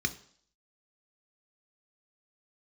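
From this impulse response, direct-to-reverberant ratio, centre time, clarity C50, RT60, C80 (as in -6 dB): 7.5 dB, 5 ms, 16.5 dB, 0.55 s, 19.5 dB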